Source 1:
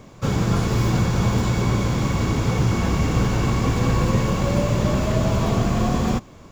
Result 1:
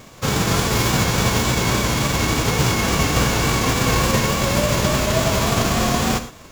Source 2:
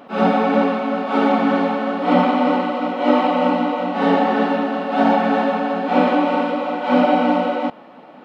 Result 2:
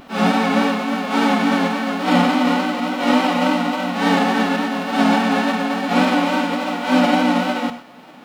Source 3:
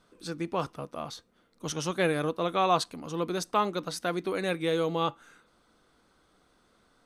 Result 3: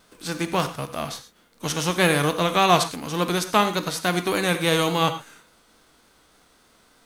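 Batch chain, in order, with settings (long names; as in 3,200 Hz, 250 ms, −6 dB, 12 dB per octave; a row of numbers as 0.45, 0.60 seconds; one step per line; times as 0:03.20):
spectral envelope flattened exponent 0.6
pitch vibrato 3.5 Hz 46 cents
reverb whose tail is shaped and stops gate 140 ms flat, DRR 9 dB
normalise the peak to −3 dBFS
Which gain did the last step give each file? +1.0, −1.0, +7.0 decibels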